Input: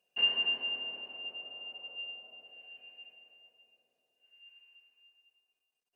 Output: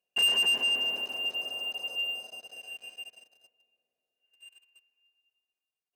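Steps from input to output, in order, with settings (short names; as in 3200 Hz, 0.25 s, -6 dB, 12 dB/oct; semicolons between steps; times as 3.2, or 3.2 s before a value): sample leveller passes 3; gain -1.5 dB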